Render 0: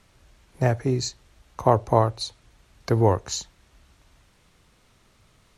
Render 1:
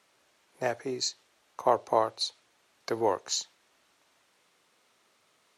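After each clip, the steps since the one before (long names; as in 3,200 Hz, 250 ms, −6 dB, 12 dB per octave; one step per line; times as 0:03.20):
high-pass filter 380 Hz 12 dB per octave
dynamic equaliser 4,200 Hz, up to +5 dB, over −42 dBFS, Q 0.77
level −4.5 dB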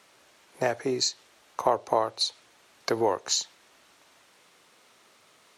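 downward compressor 2 to 1, threshold −34 dBFS, peak gain reduction 9.5 dB
level +8.5 dB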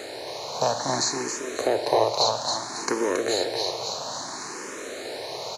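compressor on every frequency bin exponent 0.4
repeating echo 274 ms, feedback 49%, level −4 dB
frequency shifter mixed with the dry sound +0.6 Hz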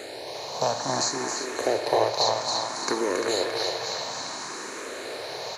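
feedback echo with a band-pass in the loop 345 ms, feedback 70%, band-pass 1,900 Hz, level −3 dB
level −1.5 dB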